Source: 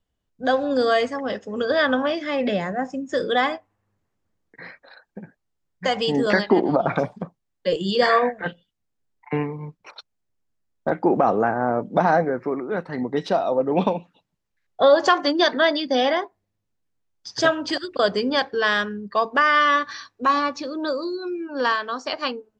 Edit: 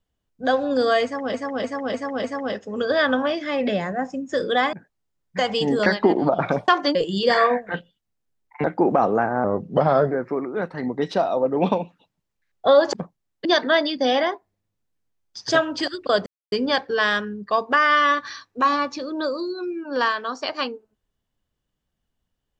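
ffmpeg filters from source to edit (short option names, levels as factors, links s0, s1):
-filter_complex "[0:a]asplit=14[s0][s1][s2][s3][s4][s5][s6][s7][s8][s9][s10][s11][s12][s13];[s0]atrim=end=1.342[s14];[s1]atrim=start=1.038:end=1.342[s15];[s2]atrim=start=1.038:end=1.342[s16];[s3]atrim=start=1.038:end=1.342[s17];[s4]atrim=start=1.038:end=3.532[s18];[s5]atrim=start=5.198:end=7.152[s19];[s6]atrim=start=15.078:end=15.352[s20];[s7]atrim=start=7.668:end=9.362[s21];[s8]atrim=start=10.888:end=11.694[s22];[s9]atrim=start=11.69:end=12.26,asetpts=PTS-STARTPTS,asetrate=37485,aresample=44100[s23];[s10]atrim=start=12.256:end=15.082[s24];[s11]atrim=start=7.148:end=7.672[s25];[s12]atrim=start=15.348:end=18.16,asetpts=PTS-STARTPTS,afade=t=out:st=2.808:d=0.004:c=hsin,apad=pad_dur=0.26[s26];[s13]atrim=start=18.16,asetpts=PTS-STARTPTS,afade=t=in:d=0.004:c=hsin[s27];[s14][s15]acrossfade=d=0.004:c1=hsin:c2=hsin[s28];[s28][s16]acrossfade=d=0.004:c1=hsin:c2=hsin[s29];[s29][s17]acrossfade=d=0.004:c1=hsin:c2=hsin[s30];[s30][s18]acrossfade=d=0.004:c1=hsin:c2=hsin[s31];[s31][s19]acrossfade=d=0.004:c1=hsin:c2=hsin[s32];[s32][s20]acrossfade=d=0.004:c1=hsin:c2=hsin[s33];[s33][s21]acrossfade=d=0.004:c1=hsin:c2=hsin[s34];[s34][s22]acrossfade=d=0.004:c1=hsin:c2=hsin[s35];[s35][s23]acrossfade=d=0.004:c1=hsin:c2=hsin[s36];[s36][s24]acrossfade=d=0.004:c1=hsin:c2=hsin[s37];[s37][s25]acrossfade=d=0.004:c1=hsin:c2=hsin[s38];[s26][s27]concat=n=2:v=0:a=1[s39];[s38][s39]acrossfade=d=0.004:c1=hsin:c2=hsin"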